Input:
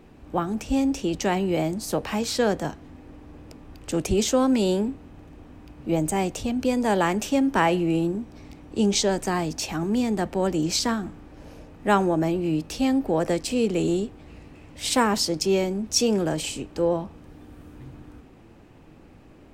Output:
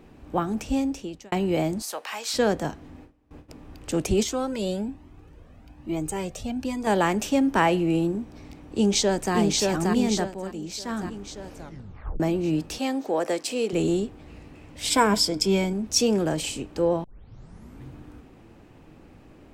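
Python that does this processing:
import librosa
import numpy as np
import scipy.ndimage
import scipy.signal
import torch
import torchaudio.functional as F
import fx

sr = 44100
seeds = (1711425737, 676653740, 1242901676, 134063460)

y = fx.highpass(x, sr, hz=900.0, slope=12, at=(1.82, 2.34))
y = fx.gate_hold(y, sr, open_db=-34.0, close_db=-41.0, hold_ms=71.0, range_db=-21, attack_ms=1.4, release_ms=100.0, at=(2.99, 3.48), fade=0.02)
y = fx.comb_cascade(y, sr, direction='rising', hz=1.2, at=(4.23, 6.87))
y = fx.echo_throw(y, sr, start_s=8.66, length_s=0.69, ms=580, feedback_pct=55, wet_db=-2.0)
y = fx.highpass(y, sr, hz=360.0, slope=12, at=(12.78, 13.73))
y = fx.ripple_eq(y, sr, per_octave=1.7, db=9, at=(14.9, 15.73))
y = fx.edit(y, sr, fx.fade_out_span(start_s=0.63, length_s=0.69),
    fx.fade_down_up(start_s=10.17, length_s=0.86, db=-10.5, fade_s=0.17),
    fx.tape_stop(start_s=11.54, length_s=0.66),
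    fx.tape_start(start_s=17.04, length_s=0.79), tone=tone)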